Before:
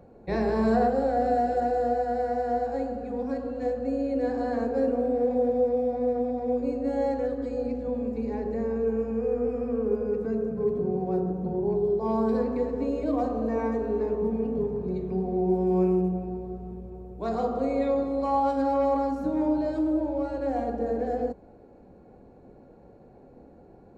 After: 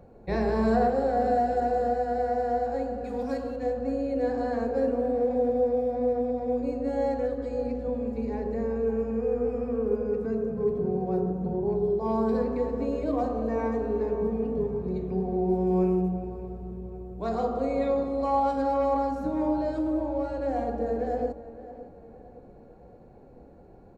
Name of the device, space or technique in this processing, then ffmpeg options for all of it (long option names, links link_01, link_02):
low shelf boost with a cut just above: -filter_complex "[0:a]asettb=1/sr,asplit=3[link_01][link_02][link_03];[link_01]atrim=end=3.044[link_04];[link_02]atrim=start=3.04:end=3.56,asetpts=PTS-STARTPTS,afade=type=in:duration=0.004:curve=qsin,afade=type=out:start_time=0.516:duration=0.004:curve=qsin,highshelf=frequency=2500:gain=11[link_05];[link_03]atrim=start=3.556[link_06];[link_04][link_05]acrossfade=duration=0.004:curve1=hsin:curve2=qsin[link_07];[link_07][link_06]acrossfade=duration=0.004:curve1=qsin:curve2=hsin,lowshelf=frequency=61:gain=6.5,equalizer=frequency=280:width_type=o:width=0.77:gain=-2.5,asplit=2[link_08][link_09];[link_09]adelay=565,lowpass=frequency=3000:poles=1,volume=-15dB,asplit=2[link_10][link_11];[link_11]adelay=565,lowpass=frequency=3000:poles=1,volume=0.43,asplit=2[link_12][link_13];[link_13]adelay=565,lowpass=frequency=3000:poles=1,volume=0.43,asplit=2[link_14][link_15];[link_15]adelay=565,lowpass=frequency=3000:poles=1,volume=0.43[link_16];[link_08][link_10][link_12][link_14][link_16]amix=inputs=5:normalize=0"